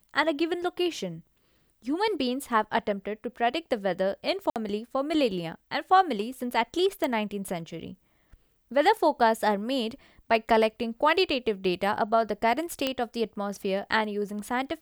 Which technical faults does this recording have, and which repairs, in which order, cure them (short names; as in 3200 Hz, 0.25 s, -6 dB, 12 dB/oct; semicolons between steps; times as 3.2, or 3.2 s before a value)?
4.5–4.56 gap 58 ms
7.04 pop -15 dBFS
12.87 pop -12 dBFS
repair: de-click; interpolate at 4.5, 58 ms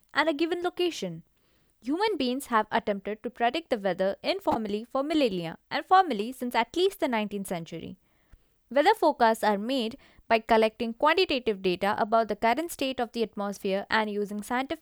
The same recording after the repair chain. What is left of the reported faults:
none